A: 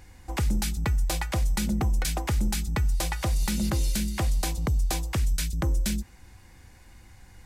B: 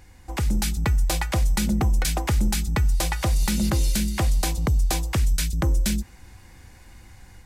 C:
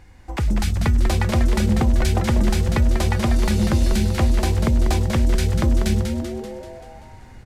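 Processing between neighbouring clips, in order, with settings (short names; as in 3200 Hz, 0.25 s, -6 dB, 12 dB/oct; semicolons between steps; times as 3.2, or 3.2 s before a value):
AGC gain up to 4 dB
LPF 3300 Hz 6 dB/oct; frequency-shifting echo 0.193 s, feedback 57%, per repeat -140 Hz, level -6 dB; gain +2.5 dB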